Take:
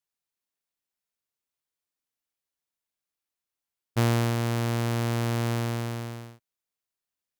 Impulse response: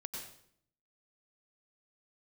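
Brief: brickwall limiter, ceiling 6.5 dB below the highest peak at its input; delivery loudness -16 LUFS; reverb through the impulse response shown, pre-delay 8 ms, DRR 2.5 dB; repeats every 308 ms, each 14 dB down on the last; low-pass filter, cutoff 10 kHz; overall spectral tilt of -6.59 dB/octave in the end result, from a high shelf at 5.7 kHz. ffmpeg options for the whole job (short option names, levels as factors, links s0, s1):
-filter_complex "[0:a]lowpass=10000,highshelf=f=5700:g=-8,alimiter=limit=0.0708:level=0:latency=1,aecho=1:1:308|616:0.2|0.0399,asplit=2[s0][s1];[1:a]atrim=start_sample=2205,adelay=8[s2];[s1][s2]afir=irnorm=-1:irlink=0,volume=0.891[s3];[s0][s3]amix=inputs=2:normalize=0,volume=3.76"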